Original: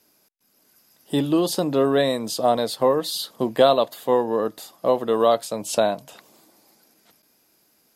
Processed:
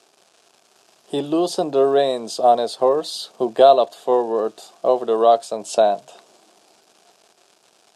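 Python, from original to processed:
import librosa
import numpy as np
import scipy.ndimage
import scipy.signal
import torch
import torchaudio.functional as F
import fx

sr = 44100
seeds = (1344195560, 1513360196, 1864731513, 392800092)

y = fx.dmg_crackle(x, sr, seeds[0], per_s=530.0, level_db=-39.0)
y = fx.cabinet(y, sr, low_hz=200.0, low_slope=12, high_hz=9400.0, hz=(270.0, 390.0, 700.0, 2000.0), db=(-5, 7, 9, -8))
y = y * librosa.db_to_amplitude(-1.0)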